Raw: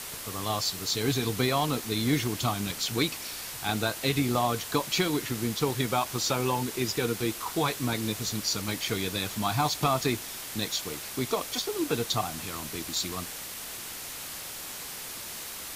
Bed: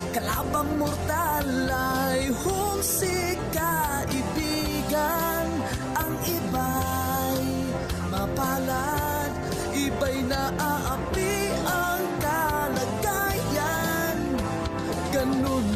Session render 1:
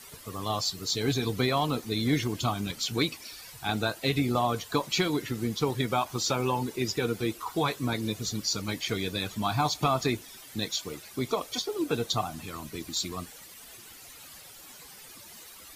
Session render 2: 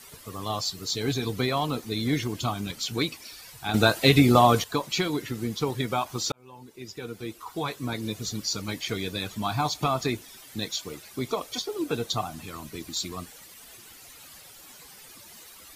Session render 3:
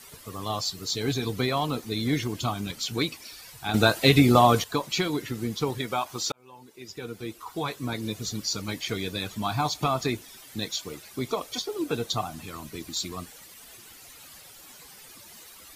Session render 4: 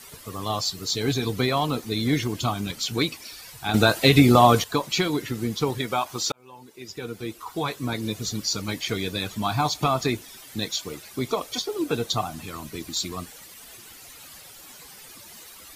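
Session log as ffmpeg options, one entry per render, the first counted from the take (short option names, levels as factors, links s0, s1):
-af "afftdn=nr=13:nf=-39"
-filter_complex "[0:a]asplit=4[s0][s1][s2][s3];[s0]atrim=end=3.742[s4];[s1]atrim=start=3.738:end=4.642,asetpts=PTS-STARTPTS,volume=2.82[s5];[s2]atrim=start=4.638:end=6.32,asetpts=PTS-STARTPTS,afade=t=out:st=1.678:d=0.004:c=hsin[s6];[s3]atrim=start=6.32,asetpts=PTS-STARTPTS,afade=t=in:d=1.91[s7];[s4][s5]acrossfade=d=0.004:c1=hsin:c2=hsin[s8];[s6][s7]concat=n=2:v=0:a=1[s9];[s8][s9]acrossfade=d=0.004:c1=hsin:c2=hsin"
-filter_complex "[0:a]asettb=1/sr,asplit=3[s0][s1][s2];[s0]atrim=end=5.784[s3];[s1]atrim=start=5.78:end=6.9,asetpts=PTS-STARTPTS,afade=t=in:d=0.004:c=qsin,afade=t=out:st=1.116:d=0.004:c=qsin,lowshelf=f=240:g=-8[s4];[s2]atrim=start=6.896[s5];[s3][s4]acrossfade=d=0.004:c1=hsin:c2=qsin[s6];[s6][s5]acrossfade=d=0.004:c1=qsin:c2=hsin"
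-af "volume=1.41,alimiter=limit=0.708:level=0:latency=1"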